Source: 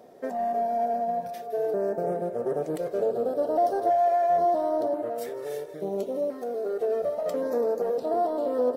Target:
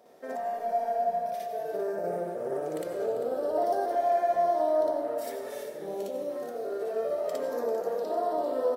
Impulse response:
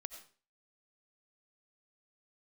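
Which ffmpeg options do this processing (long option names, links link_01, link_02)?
-filter_complex "[0:a]lowshelf=frequency=450:gain=-10.5,asplit=6[link_01][link_02][link_03][link_04][link_05][link_06];[link_02]adelay=395,afreqshift=-33,volume=-13dB[link_07];[link_03]adelay=790,afreqshift=-66,volume=-18.8dB[link_08];[link_04]adelay=1185,afreqshift=-99,volume=-24.7dB[link_09];[link_05]adelay=1580,afreqshift=-132,volume=-30.5dB[link_10];[link_06]adelay=1975,afreqshift=-165,volume=-36.4dB[link_11];[link_01][link_07][link_08][link_09][link_10][link_11]amix=inputs=6:normalize=0,asplit=2[link_12][link_13];[1:a]atrim=start_sample=2205,adelay=58[link_14];[link_13][link_14]afir=irnorm=-1:irlink=0,volume=7dB[link_15];[link_12][link_15]amix=inputs=2:normalize=0,volume=-4dB"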